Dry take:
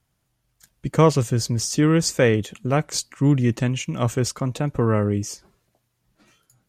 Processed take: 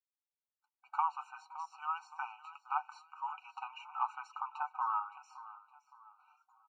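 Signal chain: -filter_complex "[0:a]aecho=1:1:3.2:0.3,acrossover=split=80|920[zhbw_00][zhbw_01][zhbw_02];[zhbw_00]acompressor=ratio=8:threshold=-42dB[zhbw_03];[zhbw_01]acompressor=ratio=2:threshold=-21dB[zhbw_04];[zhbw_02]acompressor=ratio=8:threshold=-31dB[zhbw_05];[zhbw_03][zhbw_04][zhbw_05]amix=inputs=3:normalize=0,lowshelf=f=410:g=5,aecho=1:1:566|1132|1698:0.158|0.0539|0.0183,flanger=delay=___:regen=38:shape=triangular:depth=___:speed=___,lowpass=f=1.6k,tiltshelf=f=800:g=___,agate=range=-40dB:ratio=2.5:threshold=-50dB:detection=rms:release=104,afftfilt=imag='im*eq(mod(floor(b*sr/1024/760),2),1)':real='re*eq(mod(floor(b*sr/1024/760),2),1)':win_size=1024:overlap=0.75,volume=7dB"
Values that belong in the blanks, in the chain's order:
6.1, 1, 0.59, 9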